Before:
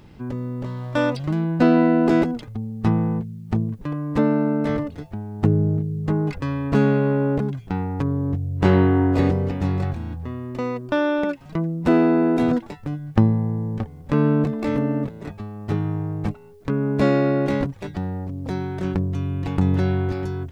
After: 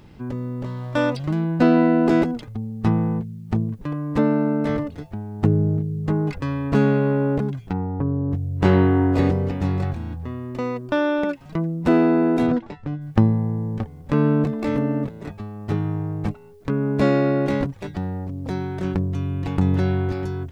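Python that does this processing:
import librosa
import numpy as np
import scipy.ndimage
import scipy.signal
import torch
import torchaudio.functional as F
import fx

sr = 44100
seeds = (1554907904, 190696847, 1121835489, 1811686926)

y = fx.lowpass(x, sr, hz=1000.0, slope=12, at=(7.72, 8.3), fade=0.02)
y = fx.air_absorb(y, sr, metres=120.0, at=(12.46, 13.0), fade=0.02)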